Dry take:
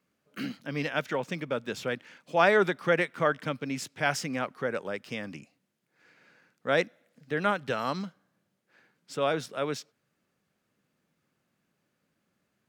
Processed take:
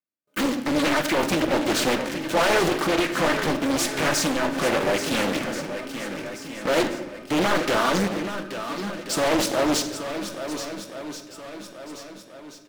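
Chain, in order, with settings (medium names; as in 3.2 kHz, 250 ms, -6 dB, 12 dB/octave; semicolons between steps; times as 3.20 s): gate with hold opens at -56 dBFS; high-pass 130 Hz 6 dB/octave; treble shelf 7.7 kHz +8.5 dB; comb 3.3 ms, depth 47%; dynamic bell 340 Hz, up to +6 dB, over -41 dBFS, Q 2.2; waveshaping leveller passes 5; peak limiter -19 dBFS, peak gain reduction 12 dB; 2.62–4.63 s: compression, threshold -25 dBFS, peak gain reduction 4.5 dB; saturation -25.5 dBFS, distortion -14 dB; shuffle delay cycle 1382 ms, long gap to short 1.5:1, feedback 40%, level -10 dB; simulated room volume 570 m³, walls mixed, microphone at 0.72 m; loudspeaker Doppler distortion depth 0.88 ms; trim +6.5 dB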